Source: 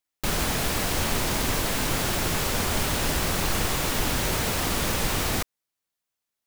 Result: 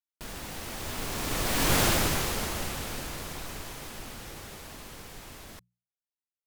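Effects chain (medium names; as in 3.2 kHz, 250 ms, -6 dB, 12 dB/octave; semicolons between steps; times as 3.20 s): Doppler pass-by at 1.80 s, 41 m/s, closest 9.3 m; hum notches 60/120/180 Hz; trim +3 dB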